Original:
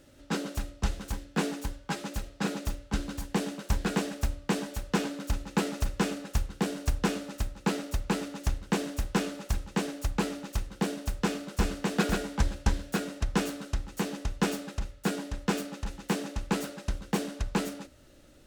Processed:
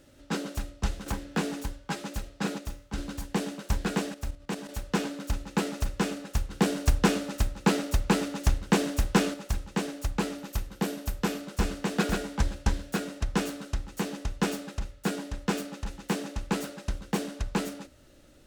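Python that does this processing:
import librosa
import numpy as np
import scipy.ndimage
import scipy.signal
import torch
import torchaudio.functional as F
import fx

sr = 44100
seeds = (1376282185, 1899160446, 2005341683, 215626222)

y = fx.band_squash(x, sr, depth_pct=70, at=(1.06, 1.63))
y = fx.comb_fb(y, sr, f0_hz=59.0, decay_s=0.57, harmonics='all', damping=0.0, mix_pct=50, at=(2.58, 2.98))
y = fx.level_steps(y, sr, step_db=10, at=(4.14, 4.69))
y = fx.peak_eq(y, sr, hz=13000.0, db=11.5, octaves=0.22, at=(10.38, 11.41))
y = fx.edit(y, sr, fx.clip_gain(start_s=6.51, length_s=2.83, db=5.0), tone=tone)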